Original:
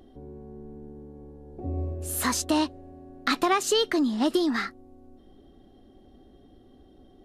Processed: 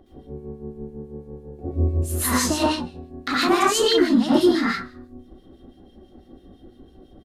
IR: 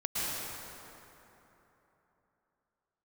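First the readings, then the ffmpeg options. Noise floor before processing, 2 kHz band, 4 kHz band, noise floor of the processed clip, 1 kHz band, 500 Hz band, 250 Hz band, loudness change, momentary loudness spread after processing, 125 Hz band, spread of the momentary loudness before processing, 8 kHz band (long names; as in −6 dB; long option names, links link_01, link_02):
−55 dBFS, +5.0 dB, +5.5 dB, −53 dBFS, +4.5 dB, +6.5 dB, +6.0 dB, +6.0 dB, 20 LU, +9.5 dB, 21 LU, +4.5 dB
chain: -filter_complex "[0:a]asplit=4[link_01][link_02][link_03][link_04];[link_02]adelay=98,afreqshift=-67,volume=-18dB[link_05];[link_03]adelay=196,afreqshift=-134,volume=-27.9dB[link_06];[link_04]adelay=294,afreqshift=-201,volume=-37.8dB[link_07];[link_01][link_05][link_06][link_07]amix=inputs=4:normalize=0[link_08];[1:a]atrim=start_sample=2205,afade=type=out:start_time=0.33:duration=0.01,atrim=end_sample=14994,asetrate=74970,aresample=44100[link_09];[link_08][link_09]afir=irnorm=-1:irlink=0,acrossover=split=1900[link_10][link_11];[link_10]aeval=exprs='val(0)*(1-0.7/2+0.7/2*cos(2*PI*6*n/s))':channel_layout=same[link_12];[link_11]aeval=exprs='val(0)*(1-0.7/2-0.7/2*cos(2*PI*6*n/s))':channel_layout=same[link_13];[link_12][link_13]amix=inputs=2:normalize=0,volume=7.5dB"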